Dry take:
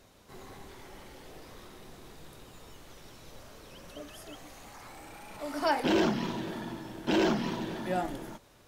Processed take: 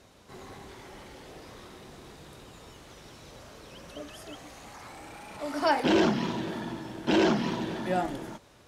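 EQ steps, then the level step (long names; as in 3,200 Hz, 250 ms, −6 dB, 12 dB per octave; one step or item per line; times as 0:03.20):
high-pass filter 41 Hz
Bessel low-pass filter 9,800 Hz, order 2
+3.0 dB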